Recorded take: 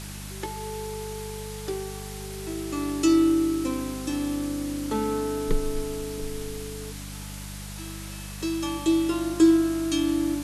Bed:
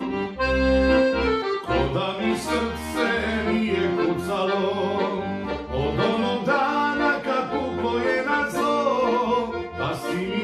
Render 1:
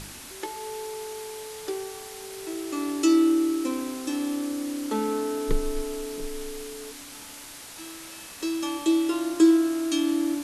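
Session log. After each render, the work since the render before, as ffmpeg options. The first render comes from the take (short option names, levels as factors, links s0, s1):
-af "bandreject=f=50:t=h:w=4,bandreject=f=100:t=h:w=4,bandreject=f=150:t=h:w=4,bandreject=f=200:t=h:w=4"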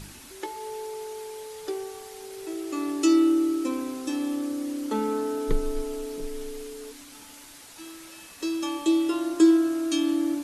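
-af "afftdn=nr=6:nf=-43"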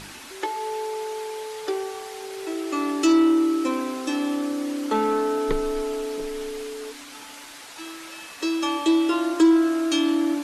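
-filter_complex "[0:a]asplit=2[s0][s1];[s1]highpass=f=720:p=1,volume=6.31,asoftclip=type=tanh:threshold=0.398[s2];[s0][s2]amix=inputs=2:normalize=0,lowpass=f=2900:p=1,volume=0.501"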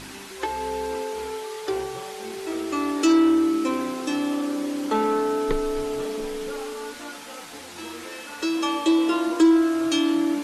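-filter_complex "[1:a]volume=0.119[s0];[0:a][s0]amix=inputs=2:normalize=0"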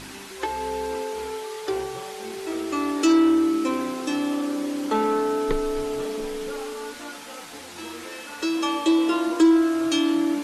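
-af anull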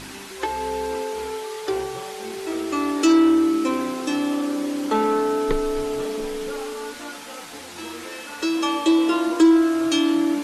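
-af "volume=1.26"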